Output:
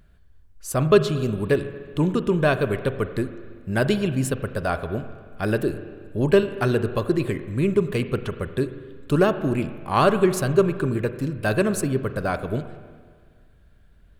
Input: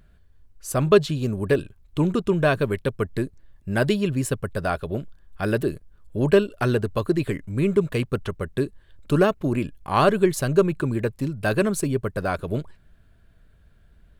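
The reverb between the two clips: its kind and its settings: spring tank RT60 1.8 s, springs 38/46 ms, chirp 80 ms, DRR 10.5 dB

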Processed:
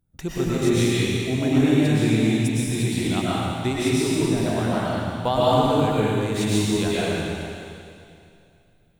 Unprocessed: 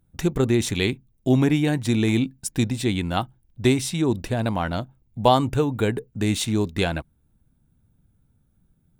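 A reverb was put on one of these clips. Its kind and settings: digital reverb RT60 2.5 s, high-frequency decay 1×, pre-delay 80 ms, DRR -8.5 dB; gain -7.5 dB

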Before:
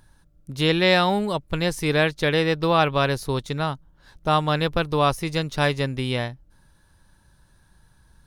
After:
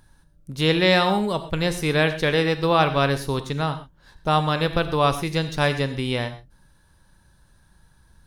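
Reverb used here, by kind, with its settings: non-linear reverb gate 0.15 s flat, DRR 9.5 dB

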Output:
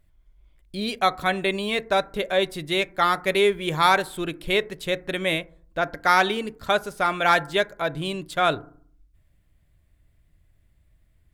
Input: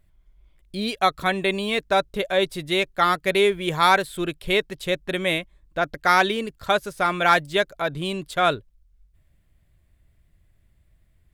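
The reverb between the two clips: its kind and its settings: FDN reverb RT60 0.51 s, low-frequency decay 1.45×, high-frequency decay 0.3×, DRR 15 dB; gain -1 dB

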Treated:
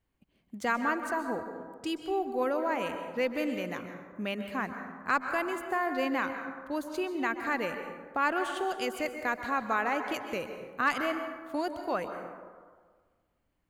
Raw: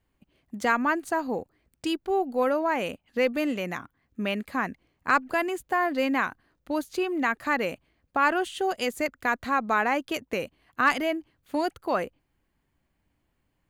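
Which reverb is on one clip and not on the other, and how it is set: plate-style reverb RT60 1.6 s, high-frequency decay 0.4×, pre-delay 0.115 s, DRR 6.5 dB; gain -5.5 dB

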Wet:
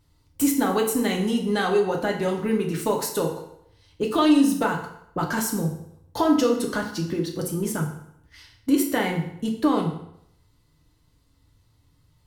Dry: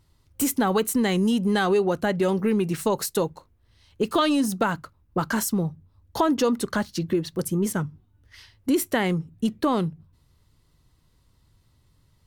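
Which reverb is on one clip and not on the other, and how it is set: FDN reverb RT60 0.74 s, low-frequency decay 0.9×, high-frequency decay 0.85×, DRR 0.5 dB; gain -2.5 dB

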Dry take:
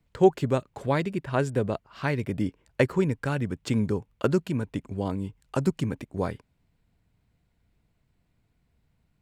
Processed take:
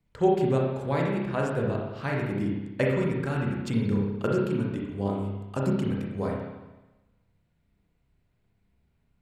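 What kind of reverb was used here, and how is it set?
spring tank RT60 1.1 s, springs 30/35/60 ms, chirp 30 ms, DRR -2 dB; gain -5 dB

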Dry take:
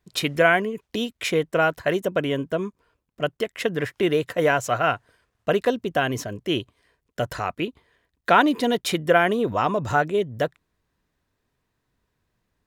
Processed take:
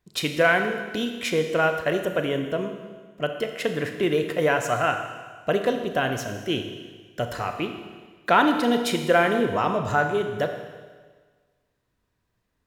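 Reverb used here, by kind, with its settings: Schroeder reverb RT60 1.5 s, combs from 26 ms, DRR 5.5 dB; gain -2 dB

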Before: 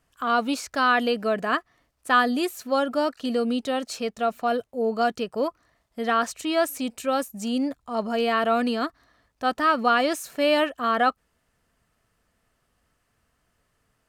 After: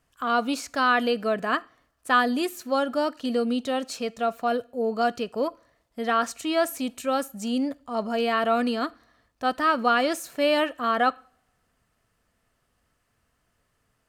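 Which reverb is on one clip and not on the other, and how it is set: two-slope reverb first 0.46 s, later 1.6 s, from -26 dB, DRR 19 dB; gain -1 dB

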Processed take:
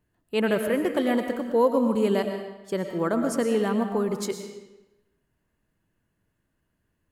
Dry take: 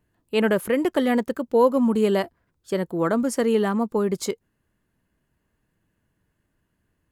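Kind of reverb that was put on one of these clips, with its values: digital reverb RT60 1 s, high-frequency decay 0.9×, pre-delay 70 ms, DRR 5.5 dB; gain -3.5 dB

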